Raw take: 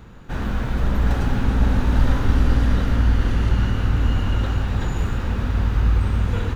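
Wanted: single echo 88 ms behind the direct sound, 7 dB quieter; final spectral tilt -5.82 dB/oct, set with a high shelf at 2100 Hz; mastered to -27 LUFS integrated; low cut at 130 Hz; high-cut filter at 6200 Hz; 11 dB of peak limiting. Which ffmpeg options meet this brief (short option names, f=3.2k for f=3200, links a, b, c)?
-af "highpass=130,lowpass=6.2k,highshelf=f=2.1k:g=-8.5,alimiter=limit=-24dB:level=0:latency=1,aecho=1:1:88:0.447,volume=5dB"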